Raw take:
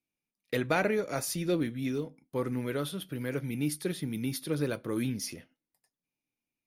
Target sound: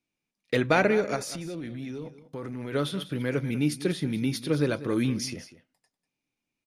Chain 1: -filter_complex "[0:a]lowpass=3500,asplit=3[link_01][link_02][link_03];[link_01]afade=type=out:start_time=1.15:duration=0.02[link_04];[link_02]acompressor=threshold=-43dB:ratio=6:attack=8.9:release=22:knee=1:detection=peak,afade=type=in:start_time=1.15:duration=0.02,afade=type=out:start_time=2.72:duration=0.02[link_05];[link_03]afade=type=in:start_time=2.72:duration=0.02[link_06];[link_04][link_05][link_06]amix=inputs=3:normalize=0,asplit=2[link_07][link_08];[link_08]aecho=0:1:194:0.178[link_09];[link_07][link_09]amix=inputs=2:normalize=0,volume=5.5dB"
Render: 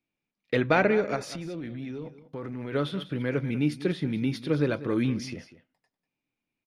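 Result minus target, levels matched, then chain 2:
8,000 Hz band −9.0 dB
-filter_complex "[0:a]lowpass=7500,asplit=3[link_01][link_02][link_03];[link_01]afade=type=out:start_time=1.15:duration=0.02[link_04];[link_02]acompressor=threshold=-43dB:ratio=6:attack=8.9:release=22:knee=1:detection=peak,afade=type=in:start_time=1.15:duration=0.02,afade=type=out:start_time=2.72:duration=0.02[link_05];[link_03]afade=type=in:start_time=2.72:duration=0.02[link_06];[link_04][link_05][link_06]amix=inputs=3:normalize=0,asplit=2[link_07][link_08];[link_08]aecho=0:1:194:0.178[link_09];[link_07][link_09]amix=inputs=2:normalize=0,volume=5.5dB"

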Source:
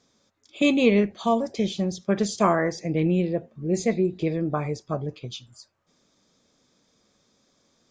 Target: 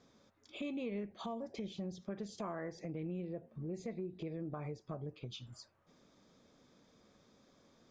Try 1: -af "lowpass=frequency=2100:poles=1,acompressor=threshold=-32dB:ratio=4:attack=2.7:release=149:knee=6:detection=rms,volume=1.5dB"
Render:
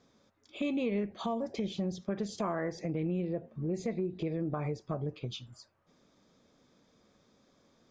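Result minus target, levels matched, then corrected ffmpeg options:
downward compressor: peak gain reduction −8 dB
-af "lowpass=frequency=2100:poles=1,acompressor=threshold=-43dB:ratio=4:attack=2.7:release=149:knee=6:detection=rms,volume=1.5dB"

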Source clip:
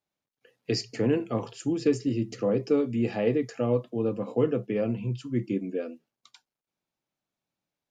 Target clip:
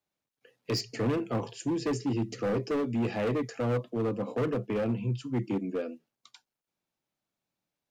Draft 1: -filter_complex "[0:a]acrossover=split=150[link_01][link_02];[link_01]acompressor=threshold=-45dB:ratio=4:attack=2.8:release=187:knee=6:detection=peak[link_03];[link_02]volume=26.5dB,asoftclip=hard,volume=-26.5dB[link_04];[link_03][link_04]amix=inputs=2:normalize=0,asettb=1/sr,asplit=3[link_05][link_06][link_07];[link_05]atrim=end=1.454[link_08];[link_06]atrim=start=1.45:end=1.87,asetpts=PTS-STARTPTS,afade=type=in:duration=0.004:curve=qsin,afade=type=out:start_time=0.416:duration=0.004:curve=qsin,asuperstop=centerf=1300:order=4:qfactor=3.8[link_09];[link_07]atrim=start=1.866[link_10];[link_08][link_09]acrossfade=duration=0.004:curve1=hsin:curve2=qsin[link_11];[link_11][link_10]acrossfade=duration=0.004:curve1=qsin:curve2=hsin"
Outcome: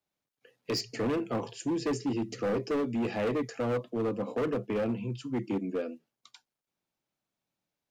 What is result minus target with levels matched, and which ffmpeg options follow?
downward compressor: peak gain reduction +13.5 dB
-filter_complex "[0:a]acrossover=split=150[link_01][link_02];[link_02]volume=26.5dB,asoftclip=hard,volume=-26.5dB[link_03];[link_01][link_03]amix=inputs=2:normalize=0,asettb=1/sr,asplit=3[link_04][link_05][link_06];[link_04]atrim=end=1.454[link_07];[link_05]atrim=start=1.45:end=1.87,asetpts=PTS-STARTPTS,afade=type=in:duration=0.004:curve=qsin,afade=type=out:start_time=0.416:duration=0.004:curve=qsin,asuperstop=centerf=1300:order=4:qfactor=3.8[link_08];[link_06]atrim=start=1.866[link_09];[link_07][link_08]acrossfade=duration=0.004:curve1=hsin:curve2=qsin[link_10];[link_10][link_09]acrossfade=duration=0.004:curve1=qsin:curve2=hsin"

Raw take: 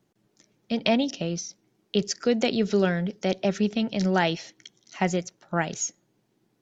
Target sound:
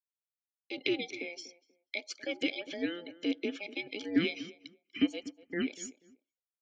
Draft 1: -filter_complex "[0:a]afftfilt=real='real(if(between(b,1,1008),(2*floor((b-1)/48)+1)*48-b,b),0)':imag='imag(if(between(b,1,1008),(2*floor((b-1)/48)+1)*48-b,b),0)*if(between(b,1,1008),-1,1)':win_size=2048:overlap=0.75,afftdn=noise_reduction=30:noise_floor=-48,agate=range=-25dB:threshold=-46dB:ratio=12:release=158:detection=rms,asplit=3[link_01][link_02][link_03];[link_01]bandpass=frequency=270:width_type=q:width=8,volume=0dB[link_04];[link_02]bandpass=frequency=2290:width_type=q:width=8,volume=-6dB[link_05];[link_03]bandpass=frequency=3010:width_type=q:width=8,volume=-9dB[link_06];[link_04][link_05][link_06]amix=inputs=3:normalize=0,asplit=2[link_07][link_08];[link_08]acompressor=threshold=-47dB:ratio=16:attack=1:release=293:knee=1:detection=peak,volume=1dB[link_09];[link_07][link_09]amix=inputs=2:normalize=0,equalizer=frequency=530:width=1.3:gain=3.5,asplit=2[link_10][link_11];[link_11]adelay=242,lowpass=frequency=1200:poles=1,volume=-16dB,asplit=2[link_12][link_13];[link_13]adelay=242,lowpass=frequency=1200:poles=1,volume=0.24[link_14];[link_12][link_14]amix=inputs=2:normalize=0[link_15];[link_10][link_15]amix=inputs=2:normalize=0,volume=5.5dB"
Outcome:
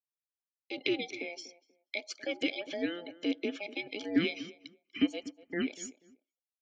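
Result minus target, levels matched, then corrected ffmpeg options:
1,000 Hz band +2.5 dB
-filter_complex "[0:a]afftfilt=real='real(if(between(b,1,1008),(2*floor((b-1)/48)+1)*48-b,b),0)':imag='imag(if(between(b,1,1008),(2*floor((b-1)/48)+1)*48-b,b),0)*if(between(b,1,1008),-1,1)':win_size=2048:overlap=0.75,afftdn=noise_reduction=30:noise_floor=-48,agate=range=-25dB:threshold=-46dB:ratio=12:release=158:detection=rms,asplit=3[link_01][link_02][link_03];[link_01]bandpass=frequency=270:width_type=q:width=8,volume=0dB[link_04];[link_02]bandpass=frequency=2290:width_type=q:width=8,volume=-6dB[link_05];[link_03]bandpass=frequency=3010:width_type=q:width=8,volume=-9dB[link_06];[link_04][link_05][link_06]amix=inputs=3:normalize=0,asplit=2[link_07][link_08];[link_08]acompressor=threshold=-47dB:ratio=16:attack=1:release=293:knee=1:detection=peak,asuperstop=centerf=820:order=12:qfactor=3.4,volume=1dB[link_09];[link_07][link_09]amix=inputs=2:normalize=0,equalizer=frequency=530:width=1.3:gain=3.5,asplit=2[link_10][link_11];[link_11]adelay=242,lowpass=frequency=1200:poles=1,volume=-16dB,asplit=2[link_12][link_13];[link_13]adelay=242,lowpass=frequency=1200:poles=1,volume=0.24[link_14];[link_12][link_14]amix=inputs=2:normalize=0[link_15];[link_10][link_15]amix=inputs=2:normalize=0,volume=5.5dB"

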